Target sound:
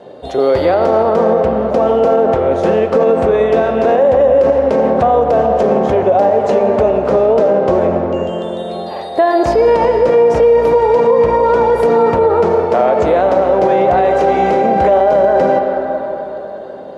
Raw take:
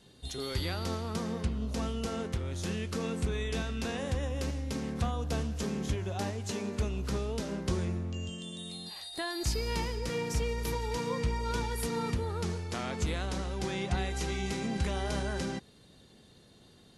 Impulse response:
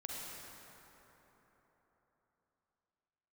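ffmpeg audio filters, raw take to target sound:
-filter_complex "[0:a]bandpass=frequency=590:width_type=q:width=3.6:csg=0,asplit=2[link_01][link_02];[1:a]atrim=start_sample=2205,lowpass=3000,lowshelf=frequency=320:gain=-9.5[link_03];[link_02][link_03]afir=irnorm=-1:irlink=0,volume=0dB[link_04];[link_01][link_04]amix=inputs=2:normalize=0,alimiter=level_in=35.5dB:limit=-1dB:release=50:level=0:latency=1,volume=-2.5dB"

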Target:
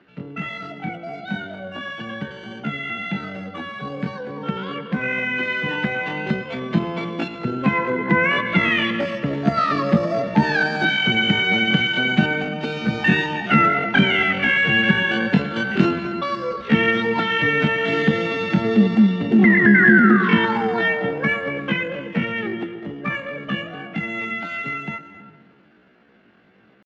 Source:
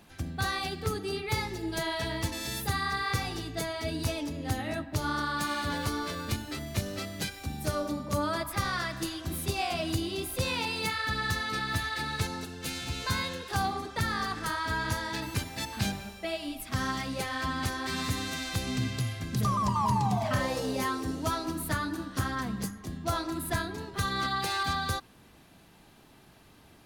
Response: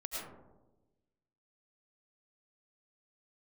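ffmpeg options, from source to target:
-filter_complex "[0:a]asplit=2[link_01][link_02];[1:a]atrim=start_sample=2205,adelay=111[link_03];[link_02][link_03]afir=irnorm=-1:irlink=0,volume=-12.5dB[link_04];[link_01][link_04]amix=inputs=2:normalize=0,asetrate=76340,aresample=44100,atempo=0.577676,dynaudnorm=framelen=410:gausssize=31:maxgain=13dB,highpass=120,equalizer=frequency=130:width_type=q:width=4:gain=-3,equalizer=frequency=210:width_type=q:width=4:gain=7,equalizer=frequency=540:width_type=q:width=4:gain=-4,equalizer=frequency=1100:width_type=q:width=4:gain=-5,equalizer=frequency=1600:width_type=q:width=4:gain=5,lowpass=frequency=3000:width=0.5412,lowpass=frequency=3000:width=1.3066,volume=2dB"

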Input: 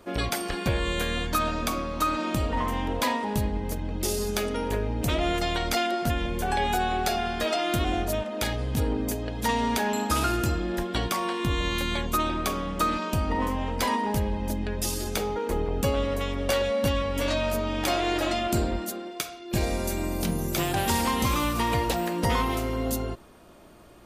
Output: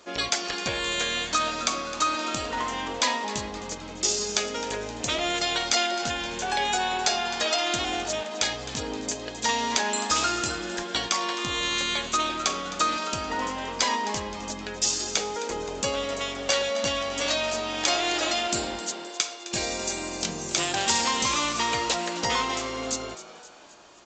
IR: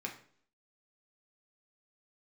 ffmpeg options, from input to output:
-filter_complex "[0:a]aemphasis=mode=production:type=riaa,asplit=6[link_01][link_02][link_03][link_04][link_05][link_06];[link_02]adelay=261,afreqshift=110,volume=-14.5dB[link_07];[link_03]adelay=522,afreqshift=220,volume=-19.9dB[link_08];[link_04]adelay=783,afreqshift=330,volume=-25.2dB[link_09];[link_05]adelay=1044,afreqshift=440,volume=-30.6dB[link_10];[link_06]adelay=1305,afreqshift=550,volume=-35.9dB[link_11];[link_01][link_07][link_08][link_09][link_10][link_11]amix=inputs=6:normalize=0" -ar 16000 -c:a pcm_alaw

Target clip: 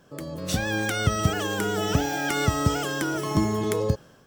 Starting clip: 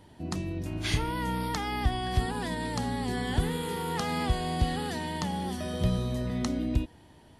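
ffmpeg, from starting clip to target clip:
ffmpeg -i in.wav -af "asetrate=76440,aresample=44100,dynaudnorm=framelen=200:gausssize=5:maxgain=8dB,volume=-3dB" out.wav

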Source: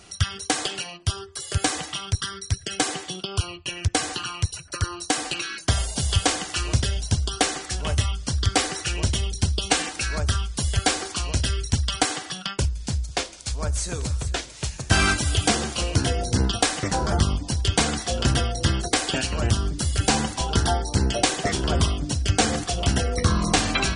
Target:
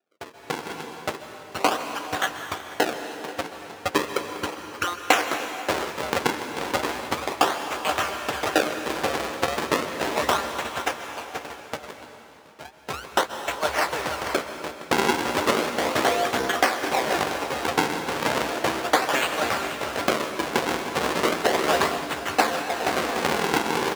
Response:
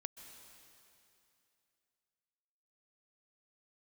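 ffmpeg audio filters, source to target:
-filter_complex "[0:a]asettb=1/sr,asplit=3[link_01][link_02][link_03];[link_01]atrim=end=10.534[link_04];[link_02]atrim=start=10.53:end=12.77,asetpts=PTS-STARTPTS,afade=type=in:duration=0.004:curve=qsin,afade=type=out:start_time=2.236:duration=0.004:curve=qsin,acompressor=threshold=-27dB:ratio=4[link_05];[link_03]atrim=start=12.766[link_06];[link_04][link_05]acrossfade=duration=0.004:curve1=hsin:curve2=qsin[link_07];[link_07][link_06]acrossfade=duration=0.004:curve1=qsin:curve2=hsin,acrusher=samples=41:mix=1:aa=0.000001:lfo=1:lforange=65.6:lforate=0.35,aecho=1:1:482:0.266,agate=range=-22dB:threshold=-27dB:ratio=16:detection=peak,highpass=470,highshelf=frequency=7900:gain=-8,asplit=2[link_08][link_09];[link_09]adelay=13,volume=-12.5dB[link_10];[link_08][link_10]amix=inputs=2:normalize=0[link_11];[1:a]atrim=start_sample=2205[link_12];[link_11][link_12]afir=irnorm=-1:irlink=0,dynaudnorm=framelen=210:gausssize=5:maxgain=15dB,volume=-1dB"

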